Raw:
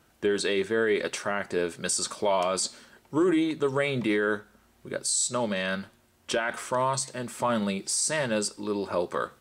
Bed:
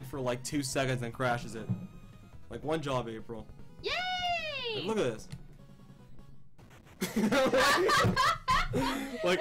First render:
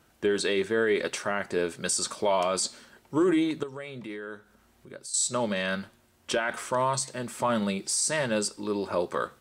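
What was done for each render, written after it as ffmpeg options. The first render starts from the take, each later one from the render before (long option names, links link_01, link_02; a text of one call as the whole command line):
ffmpeg -i in.wav -filter_complex "[0:a]asettb=1/sr,asplit=3[link_01][link_02][link_03];[link_01]atrim=end=3.634[link_04];[link_02]atrim=start=3.63:end=5.14,asetpts=PTS-STARTPTS,afade=type=in:duration=0.004:curve=qsin,afade=type=out:start_time=1.506:duration=0.004:curve=qsin,acompressor=threshold=-58dB:ratio=1.5:attack=3.2:release=140:knee=1:detection=peak[link_05];[link_03]atrim=start=5.136[link_06];[link_04][link_05]acrossfade=duration=0.004:curve1=hsin:curve2=qsin[link_07];[link_07][link_06]acrossfade=duration=0.004:curve1=qsin:curve2=hsin" out.wav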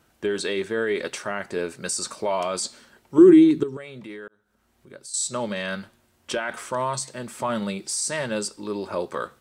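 ffmpeg -i in.wav -filter_complex "[0:a]asettb=1/sr,asplit=3[link_01][link_02][link_03];[link_01]atrim=end=1.604[link_04];[link_02]atrim=start=1.6:end=2.42,asetpts=PTS-STARTPTS,afade=type=in:duration=0.004:curve=qsin,afade=type=out:start_time=0.816:duration=0.004:curve=qsin,bandreject=frequency=3300:width=7.8[link_05];[link_03]atrim=start=2.416[link_06];[link_04][link_05]acrossfade=duration=0.004:curve1=hsin:curve2=qsin[link_07];[link_07][link_06]acrossfade=duration=0.004:curve1=qsin:curve2=hsin,asettb=1/sr,asplit=3[link_08][link_09][link_10];[link_08]atrim=end=3.184[link_11];[link_09]atrim=start=3.18:end=3.77,asetpts=PTS-STARTPTS,afade=type=in:duration=0.004:curve=qsin,afade=type=out:start_time=0.586:duration=0.004:curve=qsin,lowshelf=frequency=460:width_type=q:width=3:gain=7[link_12];[link_10]atrim=start=3.766[link_13];[link_11][link_12]acrossfade=duration=0.004:curve1=hsin:curve2=qsin[link_14];[link_14][link_13]acrossfade=duration=0.004:curve1=qsin:curve2=hsin,asplit=2[link_15][link_16];[link_15]atrim=end=4.28,asetpts=PTS-STARTPTS,afade=type=out:start_time=4.276:duration=0.004:curve=hsin[link_17];[link_16]atrim=start=4.28,asetpts=PTS-STARTPTS,afade=type=in:duration=0.68[link_18];[link_17][link_18]concat=n=2:v=0:a=1" out.wav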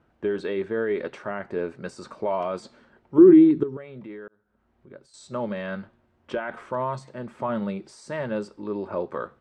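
ffmpeg -i in.wav -af "lowpass=frequency=1600:poles=1,aemphasis=mode=reproduction:type=75kf" out.wav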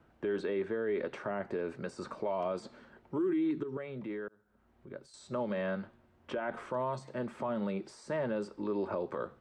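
ffmpeg -i in.wav -filter_complex "[0:a]acrossover=split=210|930|2600[link_01][link_02][link_03][link_04];[link_01]acompressor=threshold=-45dB:ratio=4[link_05];[link_02]acompressor=threshold=-28dB:ratio=4[link_06];[link_03]acompressor=threshold=-43dB:ratio=4[link_07];[link_04]acompressor=threshold=-55dB:ratio=4[link_08];[link_05][link_06][link_07][link_08]amix=inputs=4:normalize=0,alimiter=level_in=1.5dB:limit=-24dB:level=0:latency=1:release=64,volume=-1.5dB" out.wav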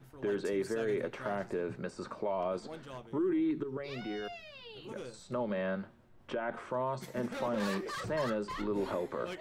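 ffmpeg -i in.wav -i bed.wav -filter_complex "[1:a]volume=-14dB[link_01];[0:a][link_01]amix=inputs=2:normalize=0" out.wav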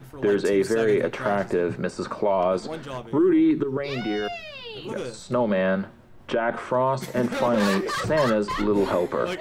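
ffmpeg -i in.wav -af "volume=12dB" out.wav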